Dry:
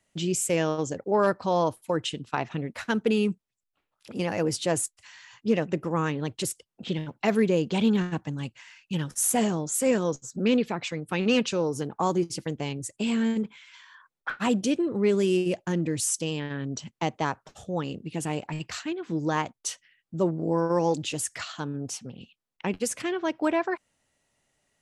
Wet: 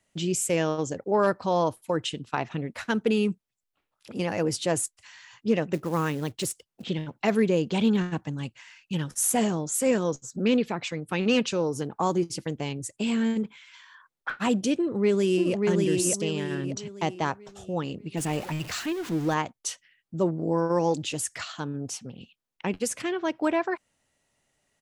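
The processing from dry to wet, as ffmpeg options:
ffmpeg -i in.wav -filter_complex "[0:a]asplit=3[link_01][link_02][link_03];[link_01]afade=type=out:start_time=5.73:duration=0.02[link_04];[link_02]acrusher=bits=5:mode=log:mix=0:aa=0.000001,afade=type=in:start_time=5.73:duration=0.02,afade=type=out:start_time=6.83:duration=0.02[link_05];[link_03]afade=type=in:start_time=6.83:duration=0.02[link_06];[link_04][link_05][link_06]amix=inputs=3:normalize=0,asplit=2[link_07][link_08];[link_08]afade=type=in:start_time=14.77:duration=0.01,afade=type=out:start_time=15.55:duration=0.01,aecho=0:1:590|1180|1770|2360|2950:0.749894|0.299958|0.119983|0.0479932|0.0191973[link_09];[link_07][link_09]amix=inputs=2:normalize=0,asettb=1/sr,asplit=3[link_10][link_11][link_12];[link_10]atrim=end=18.174[link_13];[link_11]atrim=start=18.17:end=19.34,asetpts=PTS-STARTPTS,afade=type=in:duration=0.004:curve=qsin,afade=type=out:start_time=1.166:duration=0.004:curve=qsin,aeval=exprs='val(0)+0.5*0.0178*sgn(val(0))':channel_layout=same[link_14];[link_12]atrim=start=19.336[link_15];[link_13][link_14]acrossfade=duration=0.004:curve1=hsin:curve2=qsin[link_16];[link_16][link_15]acrossfade=duration=0.004:curve1=qsin:curve2=hsin" out.wav

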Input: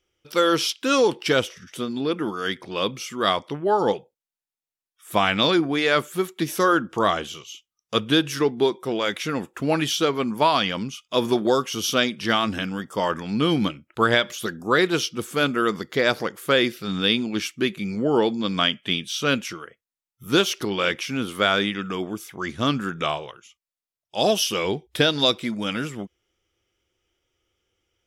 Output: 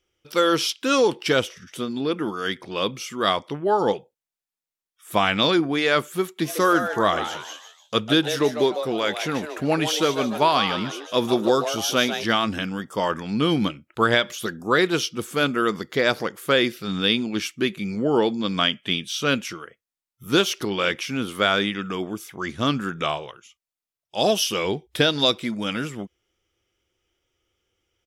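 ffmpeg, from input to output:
ffmpeg -i in.wav -filter_complex "[0:a]asplit=3[link_01][link_02][link_03];[link_01]afade=type=out:start_time=6.43:duration=0.02[link_04];[link_02]asplit=5[link_05][link_06][link_07][link_08][link_09];[link_06]adelay=150,afreqshift=150,volume=-9dB[link_10];[link_07]adelay=300,afreqshift=300,volume=-17.2dB[link_11];[link_08]adelay=450,afreqshift=450,volume=-25.4dB[link_12];[link_09]adelay=600,afreqshift=600,volume=-33.5dB[link_13];[link_05][link_10][link_11][link_12][link_13]amix=inputs=5:normalize=0,afade=type=in:start_time=6.43:duration=0.02,afade=type=out:start_time=12.23:duration=0.02[link_14];[link_03]afade=type=in:start_time=12.23:duration=0.02[link_15];[link_04][link_14][link_15]amix=inputs=3:normalize=0" out.wav

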